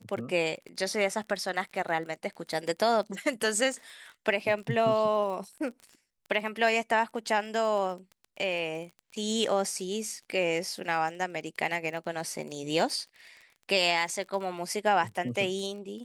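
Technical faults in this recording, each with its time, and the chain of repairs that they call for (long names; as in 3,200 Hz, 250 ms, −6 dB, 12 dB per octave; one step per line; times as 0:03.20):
surface crackle 28 per second −38 dBFS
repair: click removal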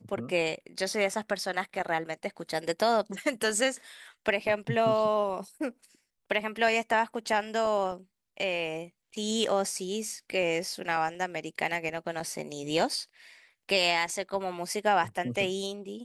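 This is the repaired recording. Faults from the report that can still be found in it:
none of them is left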